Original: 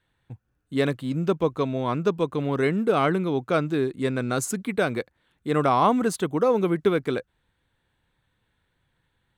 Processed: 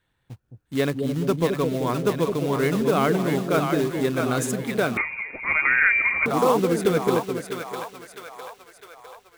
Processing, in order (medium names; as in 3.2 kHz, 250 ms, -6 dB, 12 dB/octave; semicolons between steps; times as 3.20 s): short-mantissa float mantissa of 2-bit; on a send: two-band feedback delay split 600 Hz, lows 214 ms, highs 655 ms, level -4.5 dB; 4.97–6.26 s: on the sum: frequency inversion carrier 2.6 kHz